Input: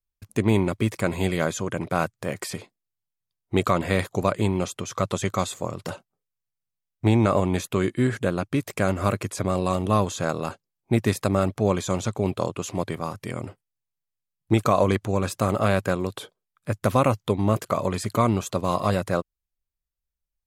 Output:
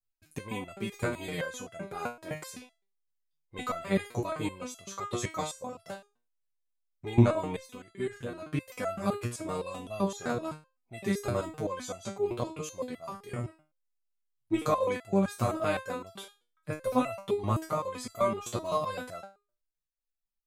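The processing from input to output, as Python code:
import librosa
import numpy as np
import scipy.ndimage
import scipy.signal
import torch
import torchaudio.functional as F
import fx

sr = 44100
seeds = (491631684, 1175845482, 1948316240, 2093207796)

y = fx.level_steps(x, sr, step_db=10, at=(7.56, 8.42))
y = fx.resonator_held(y, sr, hz=7.8, low_hz=120.0, high_hz=670.0)
y = y * 10.0 ** (5.5 / 20.0)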